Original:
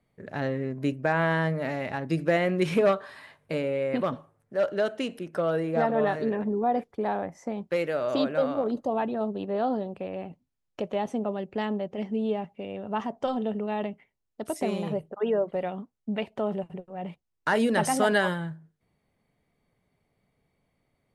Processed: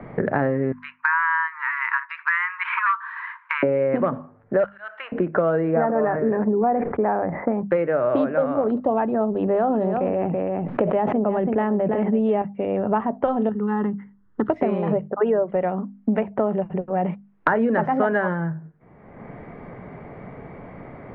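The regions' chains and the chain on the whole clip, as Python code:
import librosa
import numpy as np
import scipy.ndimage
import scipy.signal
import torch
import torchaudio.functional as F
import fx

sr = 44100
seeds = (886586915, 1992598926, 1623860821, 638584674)

y = fx.chain(x, sr, fx.brickwall_highpass(low_hz=900.0),
    fx.high_shelf(hz=2800.0, db=7.5), at=(0.72, 3.63))
y = fx.chain(y, sr, fx.highpass(hz=1100.0, slope=24),
    fx.auto_swell(attack_ms=182.0), at=(4.64, 5.12))
y = fx.chain(y, sr, fx.lowpass(hz=2300.0, slope=24),
    fx.sustainer(db_per_s=72.0), at=(5.74, 7.63))
y = fx.chain(y, sr, fx.high_shelf(hz=5100.0, db=-7.5),
    fx.echo_single(ms=332, db=-13.5),
    fx.sustainer(db_per_s=24.0), at=(9.28, 12.42))
y = fx.chain(y, sr, fx.air_absorb(metres=270.0),
    fx.fixed_phaser(hz=2400.0, stages=6), at=(13.49, 14.5))
y = scipy.signal.sosfilt(scipy.signal.butter(4, 1800.0, 'lowpass', fs=sr, output='sos'), y)
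y = fx.hum_notches(y, sr, base_hz=50, count=5)
y = fx.band_squash(y, sr, depth_pct=100)
y = y * 10.0 ** (6.5 / 20.0)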